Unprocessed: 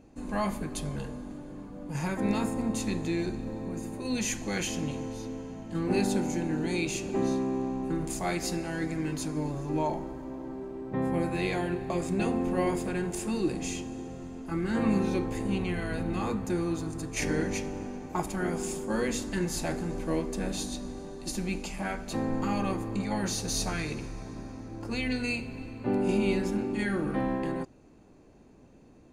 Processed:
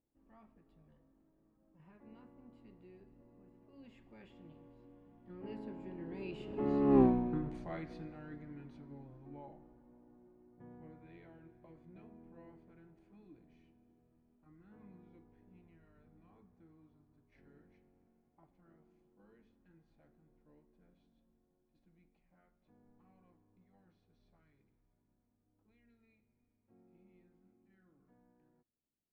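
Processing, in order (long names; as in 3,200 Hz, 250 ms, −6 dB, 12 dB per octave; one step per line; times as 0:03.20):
source passing by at 0:07.00, 27 m/s, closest 2.1 metres
high-frequency loss of the air 430 metres
level +8 dB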